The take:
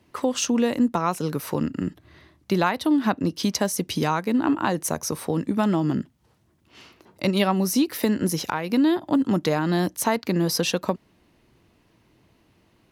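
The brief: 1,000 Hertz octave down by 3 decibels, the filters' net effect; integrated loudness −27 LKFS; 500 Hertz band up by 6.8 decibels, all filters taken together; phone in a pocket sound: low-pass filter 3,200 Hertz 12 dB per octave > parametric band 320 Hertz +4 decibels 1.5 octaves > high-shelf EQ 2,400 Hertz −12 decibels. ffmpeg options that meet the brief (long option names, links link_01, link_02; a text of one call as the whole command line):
ffmpeg -i in.wav -af "lowpass=3200,equalizer=frequency=320:width_type=o:width=1.5:gain=4,equalizer=frequency=500:width_type=o:gain=7,equalizer=frequency=1000:width_type=o:gain=-5.5,highshelf=frequency=2400:gain=-12,volume=-7dB" out.wav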